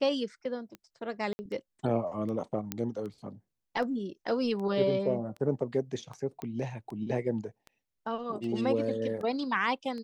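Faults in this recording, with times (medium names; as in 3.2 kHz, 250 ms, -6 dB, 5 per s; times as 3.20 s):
tick 78 rpm -30 dBFS
1.33–1.39 s: dropout 60 ms
2.72 s: pop -15 dBFS
6.42 s: pop -24 dBFS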